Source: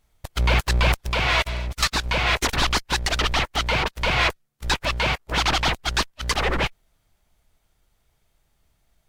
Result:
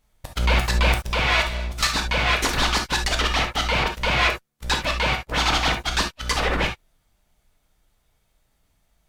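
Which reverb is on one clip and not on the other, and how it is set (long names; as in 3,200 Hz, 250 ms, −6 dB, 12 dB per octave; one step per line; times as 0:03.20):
reverb whose tail is shaped and stops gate 90 ms flat, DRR 3 dB
level −1 dB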